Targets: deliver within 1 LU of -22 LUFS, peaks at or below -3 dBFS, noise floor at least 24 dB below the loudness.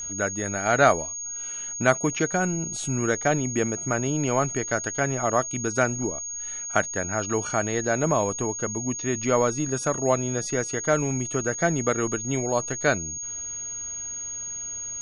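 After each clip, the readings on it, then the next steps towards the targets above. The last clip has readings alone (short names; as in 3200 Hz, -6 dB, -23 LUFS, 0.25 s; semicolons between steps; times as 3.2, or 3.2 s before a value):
steady tone 6600 Hz; tone level -31 dBFS; loudness -25.5 LUFS; peak -4.5 dBFS; loudness target -22.0 LUFS
-> notch 6600 Hz, Q 30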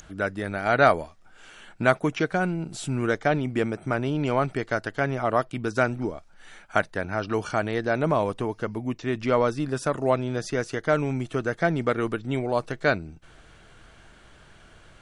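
steady tone none; loudness -26.0 LUFS; peak -4.5 dBFS; loudness target -22.0 LUFS
-> gain +4 dB; limiter -3 dBFS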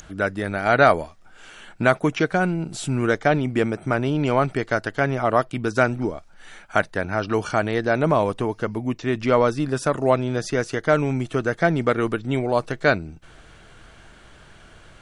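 loudness -22.0 LUFS; peak -3.0 dBFS; noise floor -49 dBFS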